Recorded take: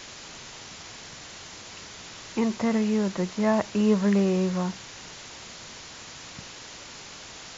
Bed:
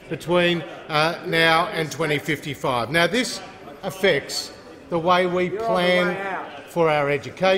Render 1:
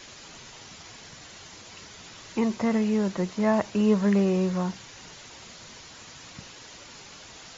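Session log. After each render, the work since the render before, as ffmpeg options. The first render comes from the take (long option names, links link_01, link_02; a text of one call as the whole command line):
ffmpeg -i in.wav -af "afftdn=noise_reduction=6:noise_floor=-44" out.wav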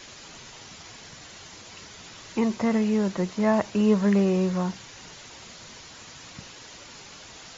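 ffmpeg -i in.wav -af "volume=1dB" out.wav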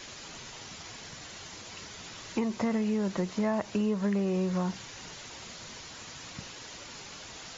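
ffmpeg -i in.wav -af "acompressor=threshold=-26dB:ratio=6" out.wav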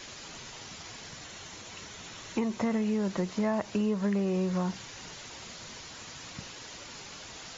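ffmpeg -i in.wav -filter_complex "[0:a]asettb=1/sr,asplit=3[link_01][link_02][link_03];[link_01]atrim=end=1.244[link_04];[link_02]atrim=start=1.24:end=2.88,asetpts=PTS-STARTPTS,afade=type=in:duration=0.004:curve=qsin,afade=type=out:start_time=1.636:duration=0.004:curve=qsin,bandreject=frequency=4800:width=12[link_05];[link_03]atrim=start=2.876[link_06];[link_04][link_05]acrossfade=duration=0.004:curve1=hsin:curve2=qsin[link_07];[link_07][link_06]acrossfade=duration=0.004:curve1=qsin:curve2=hsin" out.wav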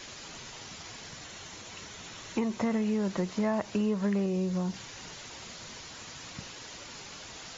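ffmpeg -i in.wav -filter_complex "[0:a]asettb=1/sr,asplit=3[link_01][link_02][link_03];[link_01]atrim=end=4.264[link_04];[link_02]atrim=start=4.26:end=4.74,asetpts=PTS-STARTPTS,afade=type=in:duration=0.004:curve=qsin,afade=type=out:start_time=0.476:duration=0.004:curve=qsin,equalizer=frequency=1300:width=0.62:gain=-7.5[link_05];[link_03]atrim=start=4.736[link_06];[link_04][link_05]acrossfade=duration=0.004:curve1=hsin:curve2=qsin[link_07];[link_07][link_06]acrossfade=duration=0.004:curve1=qsin:curve2=hsin" out.wav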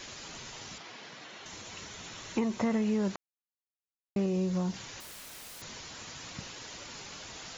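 ffmpeg -i in.wav -filter_complex "[0:a]asettb=1/sr,asplit=3[link_01][link_02][link_03];[link_01]atrim=end=0.784[link_04];[link_02]atrim=start=0.78:end=1.46,asetpts=PTS-STARTPTS,afade=type=in:duration=0.004:curve=qsin,afade=type=out:start_time=0.676:duration=0.004:curve=qsin,highpass=220,lowpass=4000[link_05];[link_03]atrim=start=1.456[link_06];[link_04][link_05]acrossfade=duration=0.004:curve1=hsin:curve2=qsin[link_07];[link_07][link_06]acrossfade=duration=0.004:curve1=qsin:curve2=hsin,asettb=1/sr,asplit=3[link_08][link_09][link_10];[link_08]atrim=end=5.004[link_11];[link_09]atrim=start=5:end=5.62,asetpts=PTS-STARTPTS,afade=type=in:duration=0.004:curve=qsin,afade=type=out:start_time=0.616:duration=0.004:curve=qsin,aeval=exprs='(mod(119*val(0)+1,2)-1)/119':channel_layout=same[link_12];[link_10]atrim=start=5.616[link_13];[link_11][link_12]acrossfade=duration=0.004:curve1=hsin:curve2=qsin[link_14];[link_14][link_13]acrossfade=duration=0.004:curve1=qsin:curve2=hsin,asplit=3[link_15][link_16][link_17];[link_15]atrim=end=3.16,asetpts=PTS-STARTPTS,afade=type=out:start_time=3.156:duration=0.004:curve=hsin[link_18];[link_16]atrim=start=3.16:end=4.16,asetpts=PTS-STARTPTS,volume=0[link_19];[link_17]atrim=start=4.16,asetpts=PTS-STARTPTS,afade=type=in:duration=0.004:curve=hsin[link_20];[link_18][link_19][link_20]concat=n=3:v=0:a=1" out.wav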